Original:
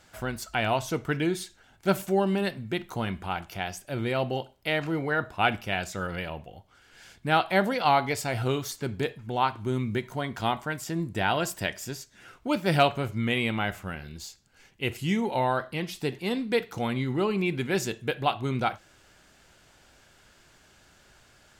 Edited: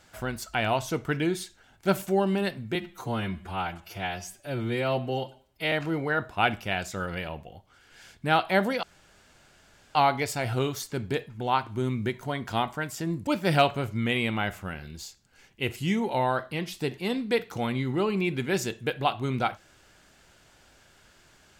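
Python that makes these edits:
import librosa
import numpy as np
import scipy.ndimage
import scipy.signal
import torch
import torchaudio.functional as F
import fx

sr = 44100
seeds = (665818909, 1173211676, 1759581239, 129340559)

y = fx.edit(x, sr, fx.stretch_span(start_s=2.75, length_s=1.98, factor=1.5),
    fx.insert_room_tone(at_s=7.84, length_s=1.12),
    fx.cut(start_s=11.16, length_s=1.32), tone=tone)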